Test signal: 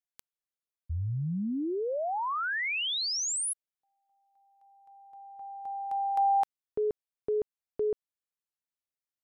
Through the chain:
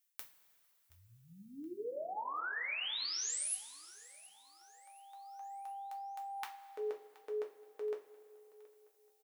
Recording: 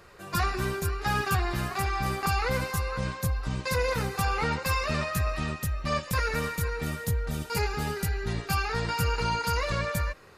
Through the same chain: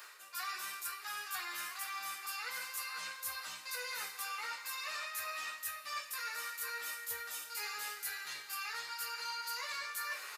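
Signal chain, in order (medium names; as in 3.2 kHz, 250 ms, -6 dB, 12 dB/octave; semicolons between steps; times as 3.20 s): high-pass 1.4 kHz 12 dB/octave; treble shelf 9.7 kHz +10.5 dB; reverse; compression 10:1, threshold -50 dBFS; reverse; feedback delay 724 ms, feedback 49%, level -21 dB; two-slope reverb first 0.27 s, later 2.7 s, from -19 dB, DRR 0.5 dB; trim +8.5 dB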